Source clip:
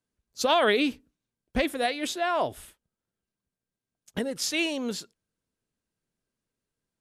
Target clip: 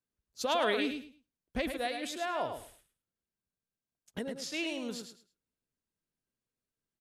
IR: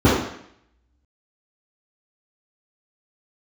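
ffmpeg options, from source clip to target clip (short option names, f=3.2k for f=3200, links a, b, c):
-filter_complex "[0:a]asettb=1/sr,asplit=3[a][b][c];[a]atrim=end=4.234[d];[b]atrim=start=4.23:end=4.67,asetpts=PTS-STARTPTS,afade=t=in:d=0.004:c=qsin,afade=t=out:st=0.436:d=0.004:c=qsin,highshelf=f=8k:g=-11.5[e];[c]atrim=start=4.666[f];[d][e]acrossfade=d=0.004:c1=hsin:c2=qsin[g];[g][f]acrossfade=d=0.004:c1=qsin:c2=hsin,aecho=1:1:106|212|318:0.447|0.0938|0.0197,volume=-8dB"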